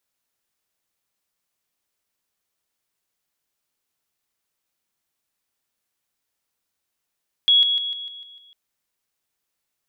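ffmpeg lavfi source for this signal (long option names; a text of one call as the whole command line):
ffmpeg -f lavfi -i "aevalsrc='pow(10,(-12-6*floor(t/0.15))/20)*sin(2*PI*3340*t)':duration=1.05:sample_rate=44100" out.wav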